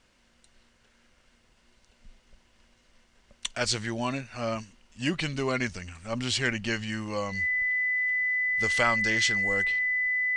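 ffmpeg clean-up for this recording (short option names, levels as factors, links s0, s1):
-af "bandreject=f=2000:w=30"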